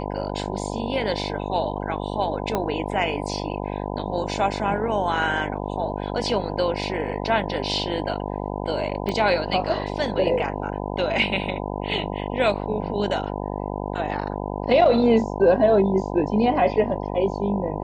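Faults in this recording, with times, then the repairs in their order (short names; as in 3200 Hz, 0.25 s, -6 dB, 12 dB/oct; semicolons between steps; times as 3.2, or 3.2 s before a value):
buzz 50 Hz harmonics 20 -29 dBFS
2.55 pop -10 dBFS
9.09 pop -14 dBFS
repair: de-click; de-hum 50 Hz, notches 20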